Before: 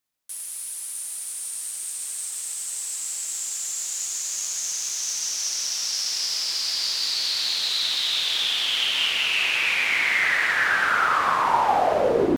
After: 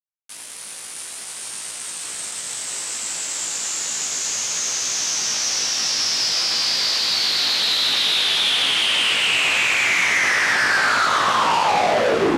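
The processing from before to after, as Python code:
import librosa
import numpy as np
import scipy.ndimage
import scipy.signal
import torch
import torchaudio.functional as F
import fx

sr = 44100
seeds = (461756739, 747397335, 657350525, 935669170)

y = fx.high_shelf(x, sr, hz=4200.0, db=-9.5)
y = fx.fuzz(y, sr, gain_db=35.0, gate_db=-43.0)
y = fx.bandpass_edges(y, sr, low_hz=110.0, high_hz=7400.0)
y = fx.doubler(y, sr, ms=18.0, db=-4)
y = y * 10.0 ** (-5.0 / 20.0)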